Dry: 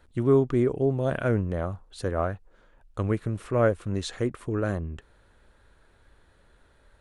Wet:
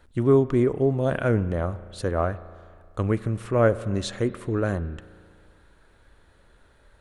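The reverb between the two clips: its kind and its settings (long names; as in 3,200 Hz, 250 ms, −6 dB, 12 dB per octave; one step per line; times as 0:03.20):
spring reverb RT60 2.1 s, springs 35 ms, chirp 65 ms, DRR 15.5 dB
level +2.5 dB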